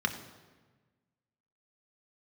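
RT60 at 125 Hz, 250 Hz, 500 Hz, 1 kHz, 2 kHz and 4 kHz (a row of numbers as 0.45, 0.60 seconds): 1.8, 1.6, 1.4, 1.3, 1.2, 1.0 seconds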